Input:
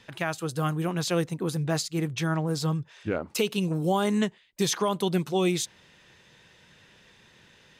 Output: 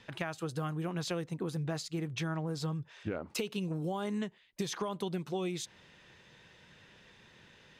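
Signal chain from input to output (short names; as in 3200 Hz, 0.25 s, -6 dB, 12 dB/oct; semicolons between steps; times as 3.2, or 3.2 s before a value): high shelf 6800 Hz -9 dB; compressor, threshold -31 dBFS, peak gain reduction 10.5 dB; gain -1.5 dB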